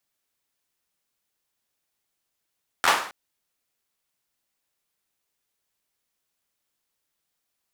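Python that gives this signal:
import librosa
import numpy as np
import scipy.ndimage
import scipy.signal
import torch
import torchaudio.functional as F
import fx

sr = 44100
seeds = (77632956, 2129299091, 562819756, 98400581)

y = fx.drum_clap(sr, seeds[0], length_s=0.27, bursts=4, spacing_ms=12, hz=1100.0, decay_s=0.5)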